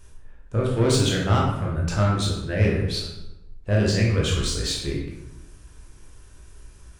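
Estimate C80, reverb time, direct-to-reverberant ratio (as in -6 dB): 5.5 dB, 0.90 s, -3.0 dB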